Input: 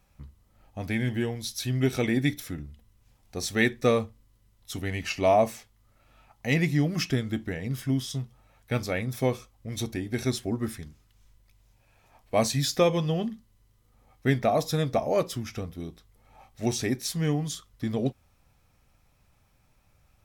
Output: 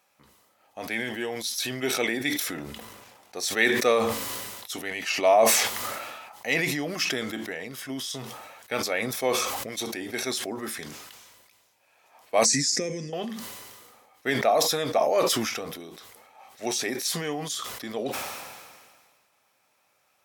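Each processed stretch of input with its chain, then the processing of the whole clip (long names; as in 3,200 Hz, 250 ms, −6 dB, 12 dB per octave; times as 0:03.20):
0:02.57–0:03.36: leveller curve on the samples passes 1 + one half of a high-frequency compander decoder only
0:12.45–0:13.13: Butterworth low-pass 12,000 Hz 72 dB per octave + downward compressor, threshold −27 dBFS + drawn EQ curve 110 Hz 0 dB, 200 Hz +9 dB, 440 Hz −2 dB, 930 Hz −24 dB, 1,400 Hz −13 dB, 2,000 Hz +1 dB, 3,300 Hz −19 dB, 5,100 Hz +6 dB, 7,800 Hz +8 dB, 12,000 Hz −11 dB
whole clip: high-pass filter 480 Hz 12 dB per octave; level that may fall only so fast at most 33 dB per second; level +3 dB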